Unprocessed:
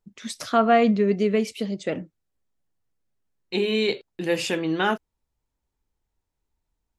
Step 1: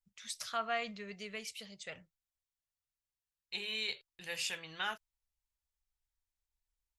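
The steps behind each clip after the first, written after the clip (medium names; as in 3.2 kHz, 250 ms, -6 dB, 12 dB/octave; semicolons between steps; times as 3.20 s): amplifier tone stack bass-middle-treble 10-0-10; trim -5.5 dB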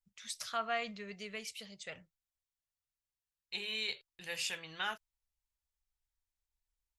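no audible change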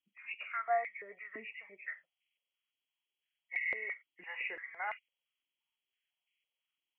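knee-point frequency compression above 1.8 kHz 4:1; step-sequenced high-pass 5.9 Hz 290–2200 Hz; trim -5.5 dB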